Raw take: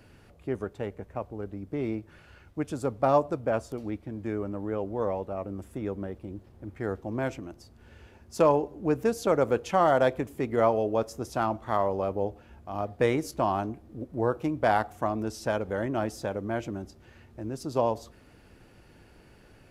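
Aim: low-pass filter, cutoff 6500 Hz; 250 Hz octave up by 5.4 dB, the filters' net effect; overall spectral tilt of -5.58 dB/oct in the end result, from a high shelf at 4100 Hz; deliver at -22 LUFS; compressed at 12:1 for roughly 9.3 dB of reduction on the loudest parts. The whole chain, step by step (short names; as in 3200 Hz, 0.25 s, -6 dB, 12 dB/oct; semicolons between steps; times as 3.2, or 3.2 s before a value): LPF 6500 Hz; bell 250 Hz +7 dB; high shelf 4100 Hz -6.5 dB; compressor 12:1, threshold -25 dBFS; gain +10.5 dB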